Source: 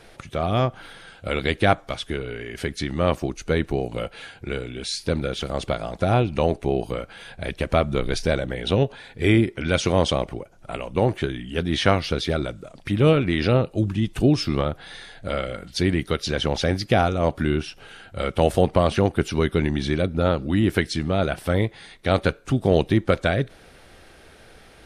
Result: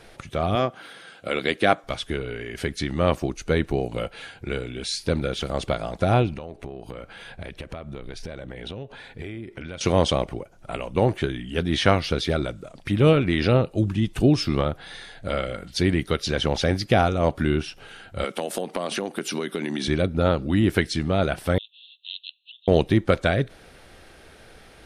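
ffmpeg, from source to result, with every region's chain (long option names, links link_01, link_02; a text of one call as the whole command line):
ffmpeg -i in.wav -filter_complex "[0:a]asettb=1/sr,asplit=3[link_01][link_02][link_03];[link_01]atrim=end=0.554[link_04];[link_02]atrim=start=0.55:end=1.84,asetpts=PTS-STARTPTS,afade=type=in:duration=0.004:curve=qsin,afade=type=out:start_time=1.286:duration=0.004:curve=qsin,highpass=200,bandreject=frequency=890:width=10[link_05];[link_03]atrim=start=1.836[link_06];[link_04][link_05]acrossfade=duration=0.004:curve1=hsin:curve2=qsin[link_07];[link_07][link_06]acrossfade=duration=0.004:curve1=qsin:curve2=hsin,asettb=1/sr,asplit=3[link_08][link_09][link_10];[link_08]atrim=end=6.334[link_11];[link_09]atrim=start=6.33:end=9.81,asetpts=PTS-STARTPTS,afade=type=in:duration=0.004:curve=qsin,afade=type=out:start_time=3.476:duration=0.004:curve=qsin,bass=frequency=250:gain=0,treble=frequency=4000:gain=-4,acompressor=threshold=-31dB:ratio=12:attack=3.2:release=140:knee=1:detection=peak[link_12];[link_10]atrim=start=9.806[link_13];[link_11][link_12]acrossfade=duration=0.004:curve1=hsin:curve2=qsin[link_14];[link_14][link_13]acrossfade=duration=0.004:curve1=qsin:curve2=hsin,asettb=1/sr,asplit=3[link_15][link_16][link_17];[link_15]atrim=end=18.244[link_18];[link_16]atrim=start=18.24:end=19.88,asetpts=PTS-STARTPTS,afade=type=in:duration=0.004:curve=qsin,afade=type=out:start_time=1.636:duration=0.004:curve=qsin,highpass=frequency=190:width=0.5412,highpass=frequency=190:width=1.3066,highshelf=frequency=5100:gain=8.5,acompressor=threshold=-22dB:ratio=12:attack=3.2:release=140:knee=1:detection=peak[link_19];[link_17]atrim=start=19.876[link_20];[link_18][link_19]acrossfade=duration=0.004:curve1=hsin:curve2=qsin[link_21];[link_21][link_20]acrossfade=duration=0.004:curve1=qsin:curve2=hsin,asettb=1/sr,asplit=3[link_22][link_23][link_24];[link_22]atrim=end=21.584[link_25];[link_23]atrim=start=21.58:end=22.68,asetpts=PTS-STARTPTS,afade=type=in:duration=0.004:curve=qsin,afade=type=out:start_time=1.096:duration=0.004:curve=qsin,asuperpass=centerf=3300:order=20:qfactor=2.2,acompressor=mode=upward:threshold=-52dB:ratio=2.5:attack=3.2:release=140:knee=2.83:detection=peak[link_26];[link_24]atrim=start=22.676[link_27];[link_25][link_26]acrossfade=duration=0.004:curve1=hsin:curve2=qsin[link_28];[link_28][link_27]acrossfade=duration=0.004:curve1=qsin:curve2=hsin" out.wav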